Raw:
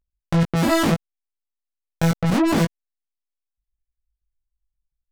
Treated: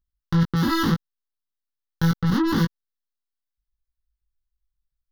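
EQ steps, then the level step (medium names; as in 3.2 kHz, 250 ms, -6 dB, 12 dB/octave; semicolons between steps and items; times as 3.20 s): static phaser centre 2.4 kHz, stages 6; 0.0 dB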